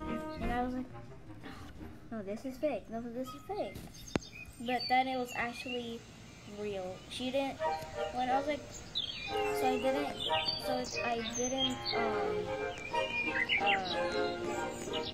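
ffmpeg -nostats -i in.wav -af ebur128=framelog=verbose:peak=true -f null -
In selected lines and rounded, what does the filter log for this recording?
Integrated loudness:
  I:         -35.0 LUFS
  Threshold: -45.4 LUFS
Loudness range:
  LRA:         7.8 LU
  Threshold: -55.4 LUFS
  LRA low:   -40.7 LUFS
  LRA high:  -32.8 LUFS
True peak:
  Peak:      -15.6 dBFS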